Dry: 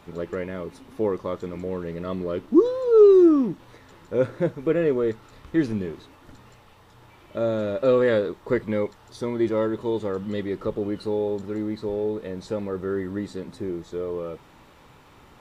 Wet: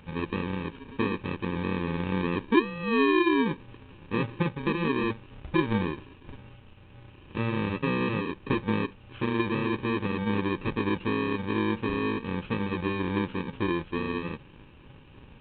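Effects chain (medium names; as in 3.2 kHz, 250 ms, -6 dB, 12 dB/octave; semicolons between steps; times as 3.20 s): bit-reversed sample order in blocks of 64 samples; compression 2.5:1, threshold -26 dBFS, peak gain reduction 11 dB; trim +5.5 dB; G.726 40 kbps 8 kHz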